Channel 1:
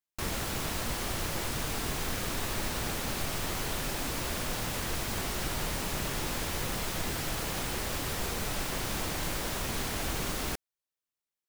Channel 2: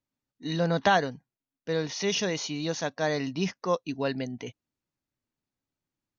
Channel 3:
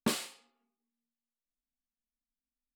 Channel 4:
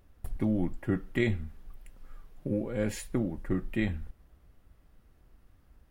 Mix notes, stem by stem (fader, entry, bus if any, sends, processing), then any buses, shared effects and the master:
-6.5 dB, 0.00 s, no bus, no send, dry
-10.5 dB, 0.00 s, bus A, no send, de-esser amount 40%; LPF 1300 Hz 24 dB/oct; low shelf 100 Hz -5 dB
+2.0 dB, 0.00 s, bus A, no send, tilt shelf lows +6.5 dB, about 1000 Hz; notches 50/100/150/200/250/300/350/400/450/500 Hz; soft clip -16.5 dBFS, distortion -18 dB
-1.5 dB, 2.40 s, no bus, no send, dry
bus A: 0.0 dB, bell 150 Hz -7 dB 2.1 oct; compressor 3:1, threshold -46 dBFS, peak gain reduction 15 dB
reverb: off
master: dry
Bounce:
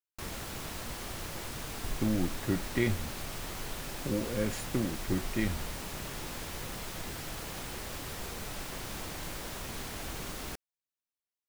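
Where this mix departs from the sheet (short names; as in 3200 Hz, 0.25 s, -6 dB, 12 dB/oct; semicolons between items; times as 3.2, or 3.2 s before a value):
stem 2: muted; stem 3: muted; stem 4: entry 2.40 s -> 1.60 s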